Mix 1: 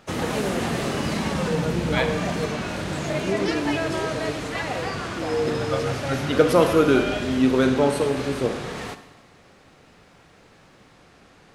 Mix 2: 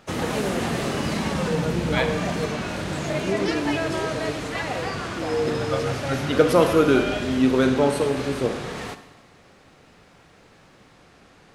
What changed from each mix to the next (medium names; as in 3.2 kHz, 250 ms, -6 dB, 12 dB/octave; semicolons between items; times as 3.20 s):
no change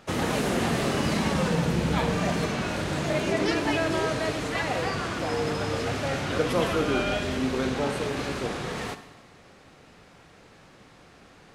first voice -6.0 dB; second voice -9.5 dB